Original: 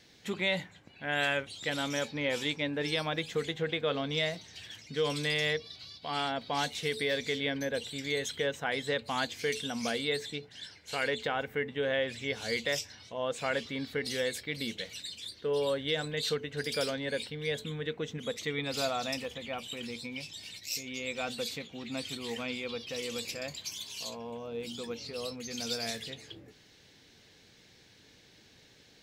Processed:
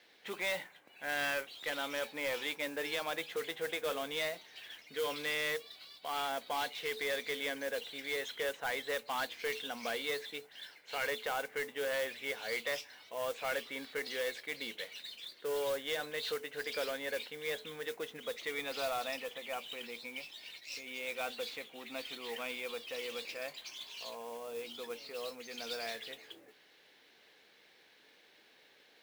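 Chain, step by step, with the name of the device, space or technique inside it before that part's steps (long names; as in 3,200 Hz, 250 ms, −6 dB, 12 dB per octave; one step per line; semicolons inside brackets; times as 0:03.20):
carbon microphone (band-pass filter 480–3,200 Hz; soft clipping −28.5 dBFS, distortion −14 dB; noise that follows the level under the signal 14 dB)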